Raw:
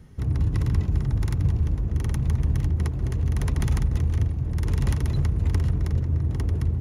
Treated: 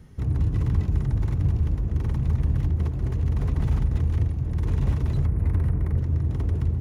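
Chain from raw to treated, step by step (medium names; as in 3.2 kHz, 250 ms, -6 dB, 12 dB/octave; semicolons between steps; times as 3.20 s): 5.25–5.99 s: high-order bell 4.8 kHz -14 dB; slew-rate limiter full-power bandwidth 18 Hz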